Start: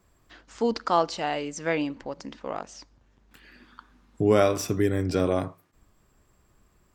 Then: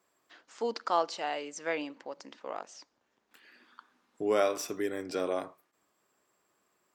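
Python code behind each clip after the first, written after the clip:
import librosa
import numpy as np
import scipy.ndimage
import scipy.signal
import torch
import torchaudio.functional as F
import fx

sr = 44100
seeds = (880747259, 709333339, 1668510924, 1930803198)

y = scipy.signal.sosfilt(scipy.signal.butter(2, 380.0, 'highpass', fs=sr, output='sos'), x)
y = F.gain(torch.from_numpy(y), -5.0).numpy()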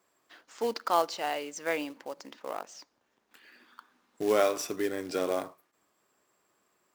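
y = fx.quant_float(x, sr, bits=2)
y = F.gain(torch.from_numpy(y), 2.0).numpy()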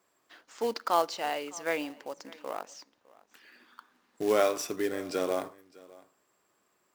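y = x + 10.0 ** (-22.5 / 20.0) * np.pad(x, (int(607 * sr / 1000.0), 0))[:len(x)]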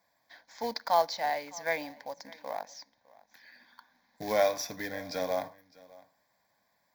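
y = fx.fixed_phaser(x, sr, hz=1900.0, stages=8)
y = F.gain(torch.from_numpy(y), 3.0).numpy()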